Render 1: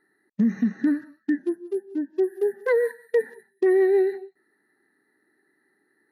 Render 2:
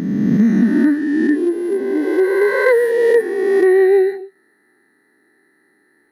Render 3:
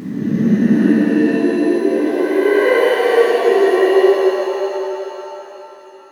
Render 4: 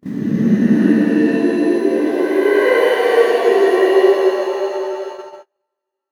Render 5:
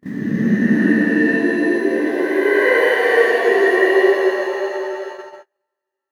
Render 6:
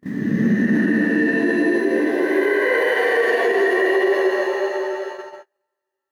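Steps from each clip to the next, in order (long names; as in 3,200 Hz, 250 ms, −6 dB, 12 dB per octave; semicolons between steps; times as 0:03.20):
peak hold with a rise ahead of every peak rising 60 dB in 2.24 s; level +6.5 dB
reverb with rising layers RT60 3.3 s, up +7 semitones, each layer −8 dB, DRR −8 dB; level −7.5 dB
noise gate −28 dBFS, range −40 dB
parametric band 1,800 Hz +12.5 dB 0.29 octaves; level −2.5 dB
brickwall limiter −9.5 dBFS, peak gain reduction 7 dB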